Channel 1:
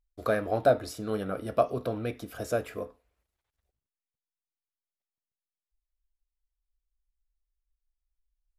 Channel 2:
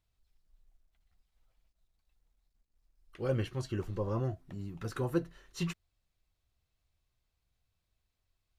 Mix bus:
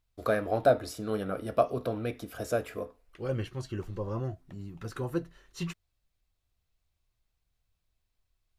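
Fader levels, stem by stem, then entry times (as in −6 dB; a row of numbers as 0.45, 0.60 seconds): −0.5, −0.5 decibels; 0.00, 0.00 seconds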